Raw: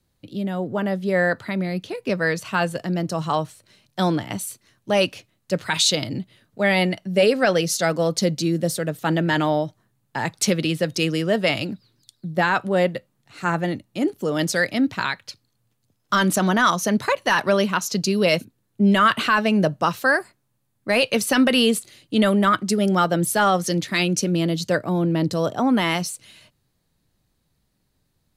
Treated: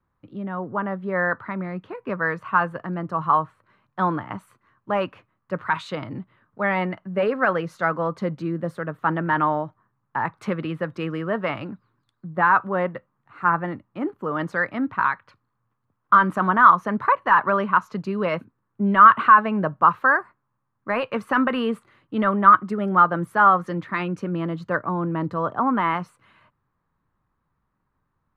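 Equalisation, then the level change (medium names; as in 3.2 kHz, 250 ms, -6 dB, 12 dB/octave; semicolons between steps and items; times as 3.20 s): FFT filter 690 Hz 0 dB, 1.1 kHz +15 dB, 5.5 kHz -25 dB; -5.0 dB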